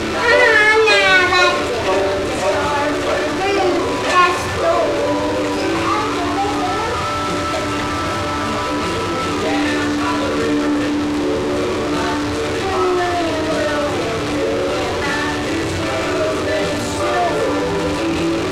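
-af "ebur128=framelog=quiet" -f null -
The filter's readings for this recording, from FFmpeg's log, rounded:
Integrated loudness:
  I:         -16.9 LUFS
  Threshold: -26.9 LUFS
Loudness range:
  LRA:         4.2 LU
  Threshold: -37.6 LUFS
  LRA low:   -19.0 LUFS
  LRA high:  -14.8 LUFS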